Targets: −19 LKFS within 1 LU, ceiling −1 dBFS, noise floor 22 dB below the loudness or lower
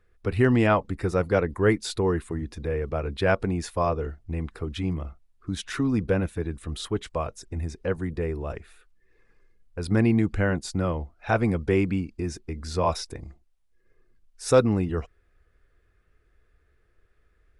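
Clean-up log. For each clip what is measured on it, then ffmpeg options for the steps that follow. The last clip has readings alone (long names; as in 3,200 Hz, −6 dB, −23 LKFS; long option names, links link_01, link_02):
integrated loudness −26.5 LKFS; sample peak −9.0 dBFS; target loudness −19.0 LKFS
→ -af "volume=7.5dB"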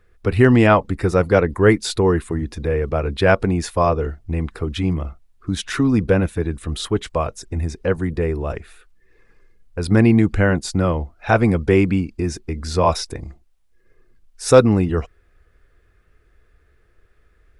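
integrated loudness −19.0 LKFS; sample peak −1.5 dBFS; background noise floor −58 dBFS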